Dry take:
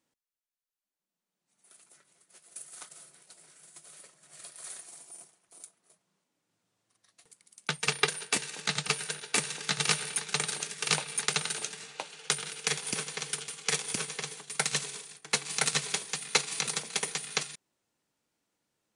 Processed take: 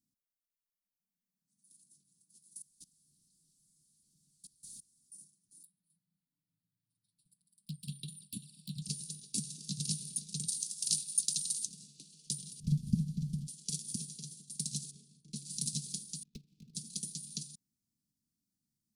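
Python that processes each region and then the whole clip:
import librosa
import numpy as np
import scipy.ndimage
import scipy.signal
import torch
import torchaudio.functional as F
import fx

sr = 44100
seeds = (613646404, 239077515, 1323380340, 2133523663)

y = fx.chain(x, sr, fx.zero_step(step_db=-42.5),
    fx.lowpass(hz=8900.0, slope=12),
    fx.level_steps(step_db=22), at=(2.62, 5.12))
y = fx.chain(y, sr, fx.env_flanger(rest_ms=6.9, full_db=-27.5),
    fx.fixed_phaser(hz=1800.0, stages=6), at=(5.63, 8.82))
y = fx.chain(y, sr, fx.highpass(hz=560.0, slope=6),
    fx.high_shelf(hz=3900.0, db=8.0), at=(10.48, 11.66))
y = fx.chain(y, sr, fx.cvsd(bps=64000),
    fx.lowpass(hz=1300.0, slope=6),
    fx.low_shelf_res(hz=260.0, db=12.5, q=1.5), at=(12.6, 13.47))
y = fx.chain(y, sr, fx.lowpass(hz=1500.0, slope=6),
    fx.doubler(ms=35.0, db=-3.0), at=(14.91, 15.36))
y = fx.chain(y, sr, fx.lowpass(hz=2400.0, slope=24),
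    fx.power_curve(exponent=1.4), at=(16.23, 16.75))
y = scipy.signal.sosfilt(scipy.signal.ellip(3, 1.0, 50, [230.0, 4900.0], 'bandstop', fs=sr, output='sos'), y)
y = fx.peak_eq(y, sr, hz=6300.0, db=-8.5, octaves=1.4)
y = y * librosa.db_to_amplitude(1.0)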